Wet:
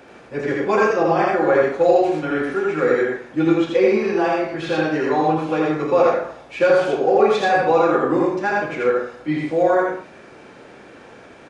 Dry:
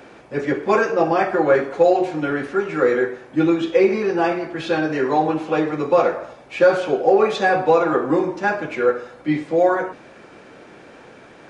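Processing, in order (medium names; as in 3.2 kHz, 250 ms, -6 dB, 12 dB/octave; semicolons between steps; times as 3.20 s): on a send: loudspeakers at several distances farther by 11 m -10 dB, 28 m -1 dB, 41 m -6 dB; on the sum: trim -2.5 dB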